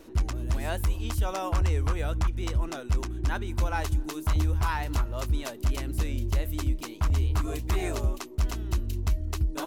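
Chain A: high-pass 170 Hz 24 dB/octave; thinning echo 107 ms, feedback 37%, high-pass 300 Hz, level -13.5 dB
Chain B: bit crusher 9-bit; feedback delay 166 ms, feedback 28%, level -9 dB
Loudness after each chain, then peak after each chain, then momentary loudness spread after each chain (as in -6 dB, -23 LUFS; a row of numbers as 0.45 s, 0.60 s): -36.0 LUFS, -29.0 LUFS; -18.0 dBFS, -15.5 dBFS; 7 LU, 5 LU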